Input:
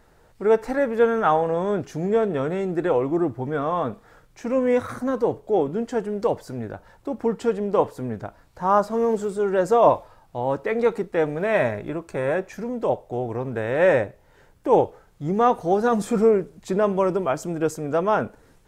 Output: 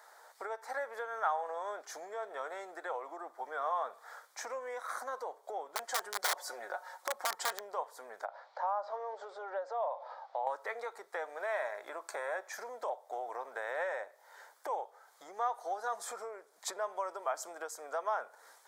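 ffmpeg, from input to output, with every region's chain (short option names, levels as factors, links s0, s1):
-filter_complex "[0:a]asettb=1/sr,asplit=3[s0][s1][s2];[s0]atrim=end=5.754[s3];[s1]atrim=start=5.75:end=7.6,asetpts=PTS-STARTPTS,afade=t=in:d=0.004:c=qsin,afade=t=out:st=1.846:d=0.004:c=qsin,highpass=f=160:p=1,aecho=1:1:5.5:0.65,atrim=end_sample=81585,aeval=exprs='(mod(8.91*val(0)+1,2)-1)/8.91':c=same[s4];[s2]atrim=start=7.596[s5];[s3][s4]acrossfade=d=0.004:c1=hsin:c2=qsin[s6];[s6][s5]acrossfade=d=0.004:c1=qsin:c2=hsin,asettb=1/sr,asplit=3[s7][s8][s9];[s7]atrim=end=8.254[s10];[s8]atrim=start=8.25:end=10.47,asetpts=PTS-STARTPTS,afade=t=in:d=0.004:c=qsin,afade=t=out:st=2.216:d=0.004:c=qsin,acompressor=threshold=0.00631:ratio=2:attack=3.2:release=140:knee=1:detection=peak,highpass=200,equalizer=f=260:t=q:w=4:g=-9,equalizer=f=550:t=q:w=4:g=10,equalizer=f=800:t=q:w=4:g=6,lowpass=f=4500:w=0.5412,lowpass=f=4500:w=1.3066[s11];[s9]atrim=start=10.466[s12];[s10][s11]acrossfade=d=0.004:c1=hsin:c2=qsin[s13];[s13][s12]acrossfade=d=0.004:c1=qsin:c2=hsin,equalizer=f=2700:w=3.7:g=-15,acompressor=threshold=0.0251:ratio=10,highpass=f=690:w=0.5412,highpass=f=690:w=1.3066,volume=1.78"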